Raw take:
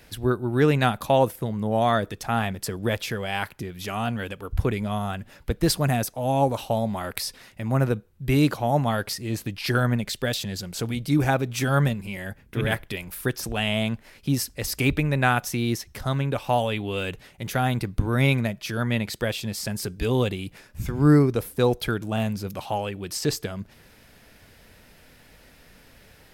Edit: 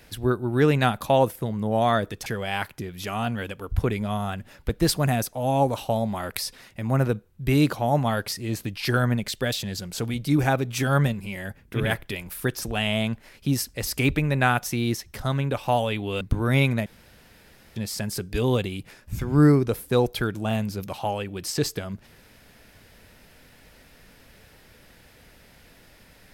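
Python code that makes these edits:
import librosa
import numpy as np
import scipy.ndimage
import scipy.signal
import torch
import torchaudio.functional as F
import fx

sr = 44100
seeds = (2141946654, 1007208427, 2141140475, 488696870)

y = fx.edit(x, sr, fx.cut(start_s=2.26, length_s=0.81),
    fx.cut(start_s=17.02, length_s=0.86),
    fx.room_tone_fill(start_s=18.53, length_s=0.9), tone=tone)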